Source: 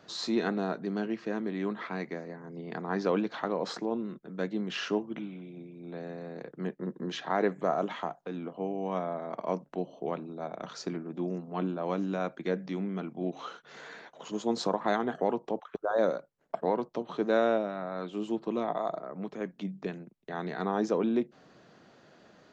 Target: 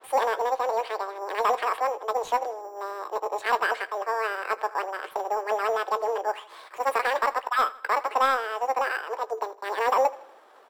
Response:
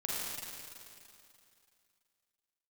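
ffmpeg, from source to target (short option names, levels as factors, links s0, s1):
-filter_complex "[0:a]agate=range=0.0224:threshold=0.00178:ratio=3:detection=peak,highpass=240,tiltshelf=f=920:g=9.5,bandreject=f=620:w=17,atempo=0.9,asplit=2[s0][s1];[s1]acrusher=samples=16:mix=1:aa=0.000001,volume=0.355[s2];[s0][s2]amix=inputs=2:normalize=0,asoftclip=type=tanh:threshold=0.224,asplit=2[s3][s4];[s4]adelay=36,volume=0.224[s5];[s3][s5]amix=inputs=2:normalize=0,asplit=2[s6][s7];[s7]aecho=0:1:186|372|558|744:0.1|0.048|0.023|0.0111[s8];[s6][s8]amix=inputs=2:normalize=0,asetrate=103194,aresample=44100,adynamicequalizer=threshold=0.00355:dfrequency=6900:dqfactor=0.7:tfrequency=6900:tqfactor=0.7:attack=5:release=100:ratio=0.375:range=2.5:mode=cutabove:tftype=highshelf"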